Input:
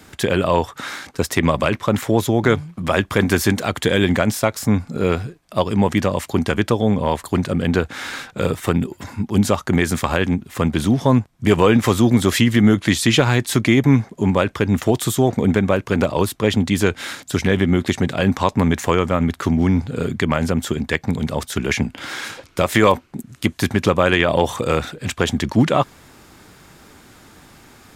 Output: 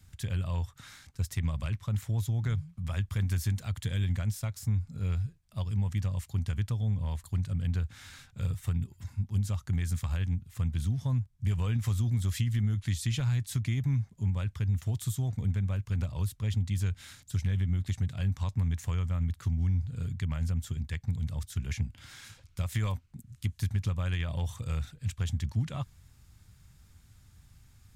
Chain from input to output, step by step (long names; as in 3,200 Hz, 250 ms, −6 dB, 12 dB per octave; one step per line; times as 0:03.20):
drawn EQ curve 100 Hz 0 dB, 350 Hz −29 dB, 7,200 Hz −13 dB
downward compressor, threshold −22 dBFS, peak gain reduction 5 dB
level −2 dB